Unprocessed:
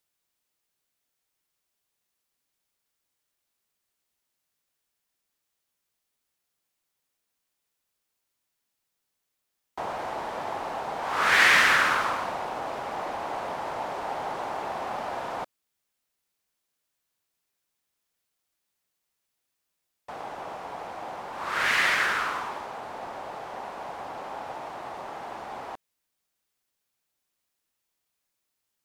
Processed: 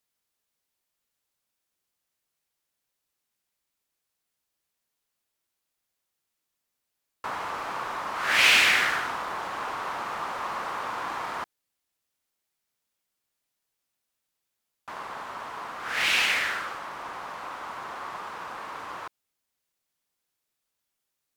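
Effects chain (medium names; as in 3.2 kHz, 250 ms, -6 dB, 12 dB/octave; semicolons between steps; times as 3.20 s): speed mistake 33 rpm record played at 45 rpm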